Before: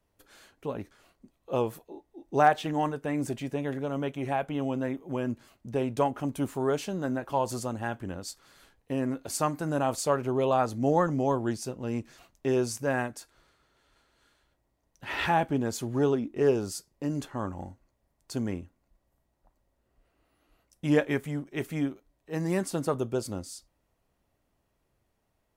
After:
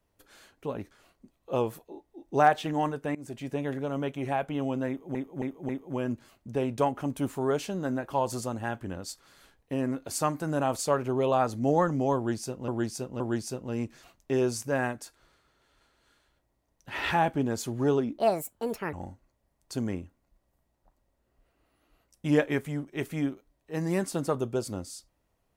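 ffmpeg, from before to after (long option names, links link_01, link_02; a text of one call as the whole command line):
ffmpeg -i in.wav -filter_complex "[0:a]asplit=9[link_01][link_02][link_03][link_04][link_05][link_06][link_07][link_08][link_09];[link_01]atrim=end=3.15,asetpts=PTS-STARTPTS,afade=type=out:start_time=3.146:duration=0.004:curve=hsin:silence=0.0841395[link_10];[link_02]atrim=start=3.15:end=5.152,asetpts=PTS-STARTPTS,afade=type=in:duration=0.39:silence=0.0841395[link_11];[link_03]atrim=start=4.878:end=5.152[link_12];[link_04]atrim=start=4.878:end=5.152[link_13];[link_05]atrim=start=4.878:end=11.872[link_14];[link_06]atrim=start=11.348:end=11.872[link_15];[link_07]atrim=start=11.348:end=16.334[link_16];[link_08]atrim=start=16.33:end=17.52,asetpts=PTS-STARTPTS,asetrate=70119,aresample=44100[link_17];[link_09]atrim=start=17.516[link_18];[link_10][link_11]concat=n=2:v=0:a=1[link_19];[link_19][link_12]acrossfade=duration=0.004:curve1=hsin:curve2=hsin[link_20];[link_20][link_13]acrossfade=duration=0.004:curve1=hsin:curve2=hsin[link_21];[link_21][link_14]acrossfade=duration=0.004:curve1=hsin:curve2=hsin[link_22];[link_22][link_15]acrossfade=duration=0.004:curve1=hsin:curve2=hsin[link_23];[link_23][link_16]acrossfade=duration=0.004:curve1=hsin:curve2=hsin[link_24];[link_24][link_17]acrossfade=duration=0.004:curve1=hsin:curve2=hsin[link_25];[link_25][link_18]acrossfade=duration=0.004:curve1=hsin:curve2=hsin" out.wav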